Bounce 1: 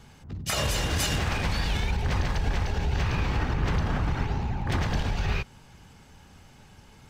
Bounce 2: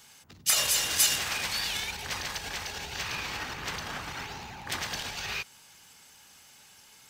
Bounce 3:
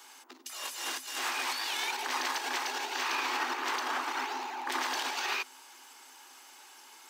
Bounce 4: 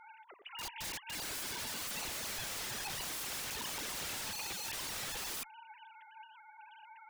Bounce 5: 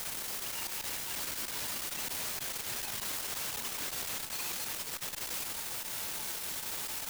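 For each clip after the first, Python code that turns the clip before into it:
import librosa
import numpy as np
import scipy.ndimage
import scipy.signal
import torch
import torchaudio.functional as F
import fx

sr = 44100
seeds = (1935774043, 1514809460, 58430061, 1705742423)

y1 = fx.tilt_eq(x, sr, slope=4.5)
y1 = F.gain(torch.from_numpy(y1), -4.5).numpy()
y2 = fx.over_compress(y1, sr, threshold_db=-34.0, ratio=-1.0)
y2 = scipy.signal.sosfilt(scipy.signal.cheby1(6, 9, 250.0, 'highpass', fs=sr, output='sos'), y2)
y2 = F.gain(torch.from_numpy(y2), 6.5).numpy()
y3 = fx.sine_speech(y2, sr)
y3 = fx.cheby_harmonics(y3, sr, harmonics=(6,), levels_db=(-44,), full_scale_db=-20.0)
y3 = (np.mod(10.0 ** (36.0 / 20.0) * y3 + 1.0, 2.0) - 1.0) / 10.0 ** (36.0 / 20.0)
y4 = fx.quant_dither(y3, sr, seeds[0], bits=6, dither='triangular')
y4 = fx.transformer_sat(y4, sr, knee_hz=340.0)
y4 = F.gain(torch.from_numpy(y4), -1.0).numpy()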